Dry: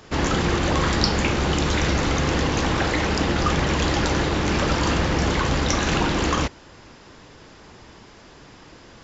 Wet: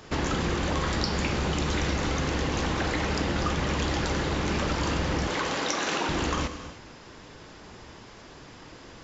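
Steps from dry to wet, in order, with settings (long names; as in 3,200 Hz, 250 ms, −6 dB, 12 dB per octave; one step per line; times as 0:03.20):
0:05.27–0:06.09: high-pass filter 340 Hz 12 dB per octave
downward compressor 3 to 1, threshold −25 dBFS, peak gain reduction 8.5 dB
reverb whose tail is shaped and stops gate 340 ms flat, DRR 9.5 dB
level −1 dB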